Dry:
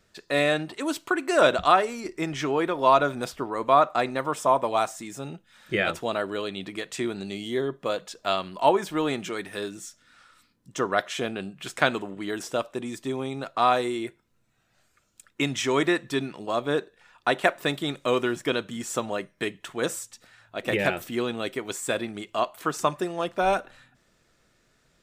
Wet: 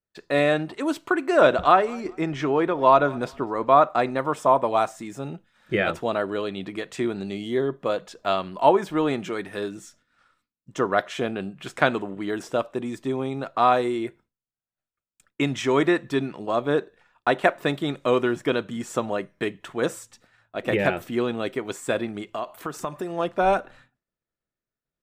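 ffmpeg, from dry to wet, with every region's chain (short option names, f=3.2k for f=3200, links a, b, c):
-filter_complex "[0:a]asettb=1/sr,asplit=3[a][b][c];[a]atrim=end=1.284[d];[b]atrim=start=1.28:end=3.77,asetpts=PTS-STARTPTS,afade=t=in:d=0.004:c=qsin,afade=t=out:st=2.486:d=0.004:c=qsin,highshelf=f=8.2k:g=-8,aecho=1:1:200|400:0.0631|0.017,atrim=end_sample=109809[e];[c]atrim=start=3.766[f];[d][e]acrossfade=d=0.004:c1=hsin:c2=qsin[g];[g][f]acrossfade=d=0.004:c1=qsin:c2=hsin,asettb=1/sr,asplit=3[h][i][j];[h]atrim=end=22.354[k];[i]atrim=start=22.35:end=23.12,asetpts=PTS-STARTPTS,afade=t=in:d=0.004:c=qsin,afade=t=out:st=0.766:d=0.004:c=qsin,highshelf=f=11k:g=10.5,acompressor=threshold=-31dB:ratio=2.5:attack=3.2:release=140:knee=1:detection=peak[l];[j]atrim=start=23.116[m];[k][l]acrossfade=d=0.004:c1=hsin:c2=qsin[n];[n][m]acrossfade=d=0.004:c1=qsin:c2=hsin,agate=range=-33dB:threshold=-48dB:ratio=3:detection=peak,highshelf=f=2.7k:g=-10,volume=3.5dB"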